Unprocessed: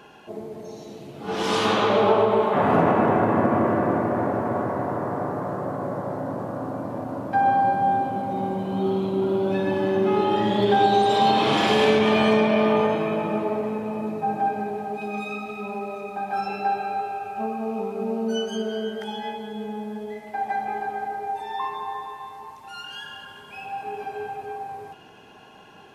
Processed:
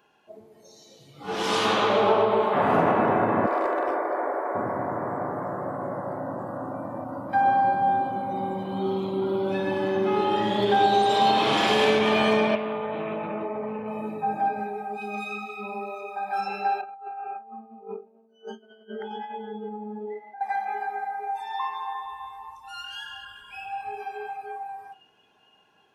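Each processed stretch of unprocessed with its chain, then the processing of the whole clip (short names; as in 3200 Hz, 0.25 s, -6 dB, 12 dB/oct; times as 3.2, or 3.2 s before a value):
3.46–4.55 HPF 360 Hz 24 dB/oct + overloaded stage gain 16 dB
12.55–13.88 compressor 5:1, threshold -23 dBFS + air absorption 170 m + Doppler distortion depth 0.11 ms
16.81–20.41 negative-ratio compressor -32 dBFS, ratio -0.5 + band-pass 410 Hz, Q 0.52
22.05–24 low shelf 110 Hz +12 dB + notch 370 Hz, Q 6.4
whole clip: low shelf 380 Hz -6 dB; spectral noise reduction 14 dB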